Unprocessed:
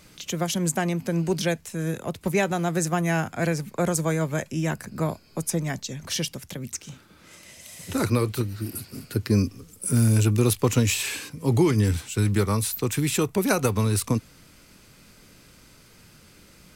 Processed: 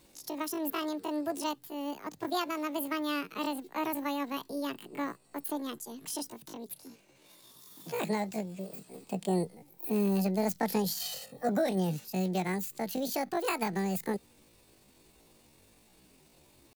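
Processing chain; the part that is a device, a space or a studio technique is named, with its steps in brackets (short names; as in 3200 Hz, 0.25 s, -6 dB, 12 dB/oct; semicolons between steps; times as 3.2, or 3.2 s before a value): chipmunk voice (pitch shift +10 st); 11–11.49 comb 1.6 ms, depth 93%; gain -9 dB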